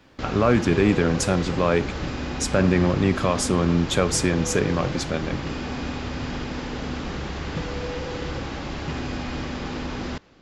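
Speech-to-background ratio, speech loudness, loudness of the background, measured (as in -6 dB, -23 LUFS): 8.5 dB, -22.5 LUFS, -31.0 LUFS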